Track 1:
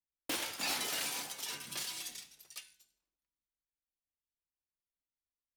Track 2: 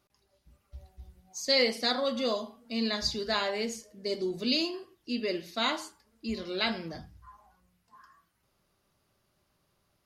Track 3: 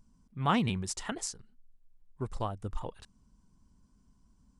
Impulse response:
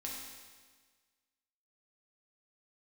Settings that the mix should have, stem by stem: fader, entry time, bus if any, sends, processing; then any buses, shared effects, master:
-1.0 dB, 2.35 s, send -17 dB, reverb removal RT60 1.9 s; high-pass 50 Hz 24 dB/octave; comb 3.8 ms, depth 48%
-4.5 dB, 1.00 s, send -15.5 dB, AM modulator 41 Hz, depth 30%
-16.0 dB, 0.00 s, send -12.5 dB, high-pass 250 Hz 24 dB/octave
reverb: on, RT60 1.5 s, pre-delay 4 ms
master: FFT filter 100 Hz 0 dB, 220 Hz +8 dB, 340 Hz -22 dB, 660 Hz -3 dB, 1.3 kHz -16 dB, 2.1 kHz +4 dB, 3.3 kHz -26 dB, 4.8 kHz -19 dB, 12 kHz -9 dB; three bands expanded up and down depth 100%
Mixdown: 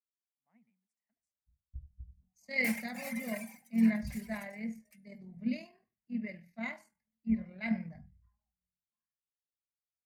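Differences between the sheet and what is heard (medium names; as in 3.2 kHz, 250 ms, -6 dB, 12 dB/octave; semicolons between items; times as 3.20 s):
stem 2: send off; stem 3 -16.0 dB -> -24.0 dB; reverb return -8.5 dB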